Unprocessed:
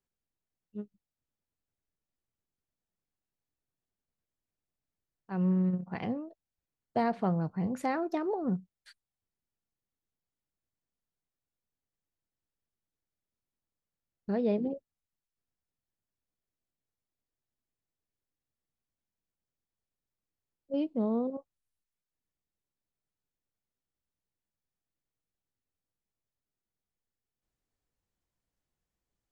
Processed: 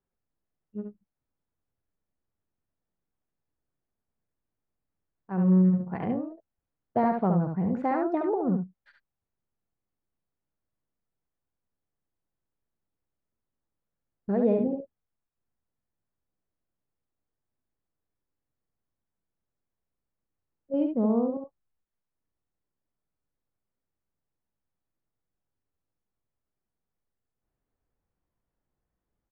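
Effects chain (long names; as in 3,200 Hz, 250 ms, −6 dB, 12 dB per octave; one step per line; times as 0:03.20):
low-pass filter 1,500 Hz 12 dB per octave
on a send: single-tap delay 70 ms −5 dB
on the sum: level +4 dB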